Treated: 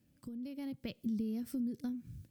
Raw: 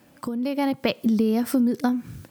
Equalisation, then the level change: amplifier tone stack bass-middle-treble 10-0-1; +2.5 dB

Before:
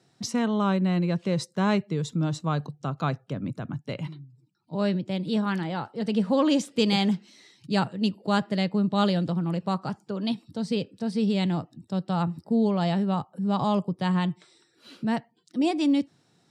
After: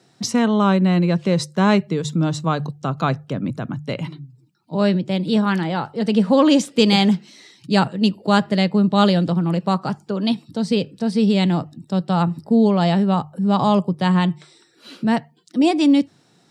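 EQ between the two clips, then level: high-pass 100 Hz; hum notches 50/100/150 Hz; +8.0 dB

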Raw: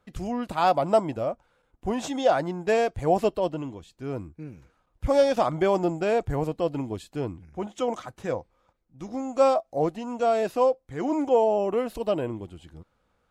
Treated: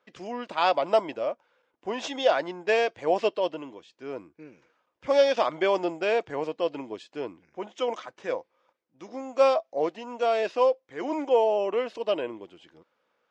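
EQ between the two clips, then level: dynamic bell 3.3 kHz, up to +5 dB, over -42 dBFS, Q 0.83; cabinet simulation 440–5600 Hz, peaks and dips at 760 Hz -6 dB, 1.3 kHz -4 dB, 4.1 kHz -5 dB; +2.0 dB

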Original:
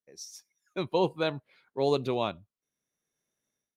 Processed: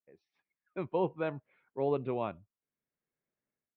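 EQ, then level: inverse Chebyshev low-pass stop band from 8.1 kHz, stop band 60 dB; distance through air 200 m; -4.0 dB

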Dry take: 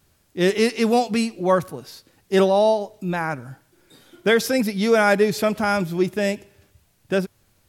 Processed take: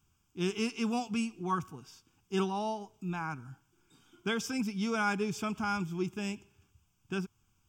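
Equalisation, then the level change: static phaser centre 2.8 kHz, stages 8; -8.5 dB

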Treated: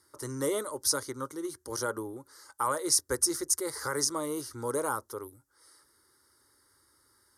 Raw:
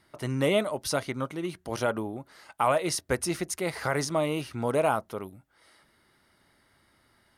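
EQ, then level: high-pass 59 Hz; high-order bell 7.9 kHz +10.5 dB; static phaser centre 690 Hz, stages 6; -2.0 dB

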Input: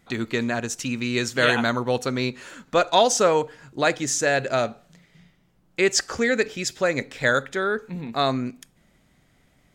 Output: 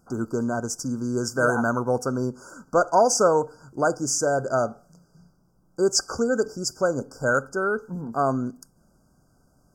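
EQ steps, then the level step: brick-wall FIR band-stop 1.6–4.6 kHz; 0.0 dB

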